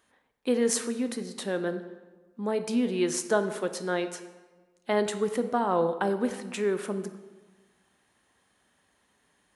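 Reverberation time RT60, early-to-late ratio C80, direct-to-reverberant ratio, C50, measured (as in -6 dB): 1.4 s, 12.5 dB, 9.0 dB, 11.0 dB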